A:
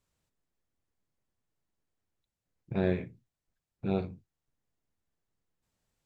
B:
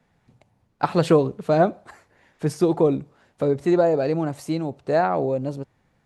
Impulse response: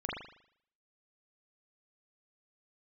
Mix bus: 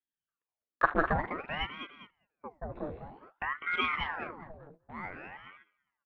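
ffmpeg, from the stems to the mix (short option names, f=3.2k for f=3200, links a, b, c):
-filter_complex "[0:a]acompressor=threshold=-33dB:ratio=2.5,volume=-13dB,asplit=2[a][b];[b]volume=-5dB[c];[1:a]lowpass=f=1.5k:t=q:w=9.8,afwtdn=0.0631,volume=-1.5dB,afade=t=out:st=1.02:d=0.2:silence=0.281838,afade=t=in:st=2.91:d=0.34:silence=0.446684,afade=t=out:st=4.05:d=0.38:silence=0.266073,asplit=3[d][e][f];[e]volume=-23dB[g];[f]volume=-8dB[h];[2:a]atrim=start_sample=2205[i];[g][i]afir=irnorm=-1:irlink=0[j];[c][h]amix=inputs=2:normalize=0,aecho=0:1:201|402|603|804|1005:1|0.34|0.116|0.0393|0.0134[k];[a][d][j][k]amix=inputs=4:normalize=0,agate=range=-15dB:threshold=-51dB:ratio=16:detection=peak,aeval=exprs='val(0)*sin(2*PI*970*n/s+970*0.85/0.53*sin(2*PI*0.53*n/s))':c=same"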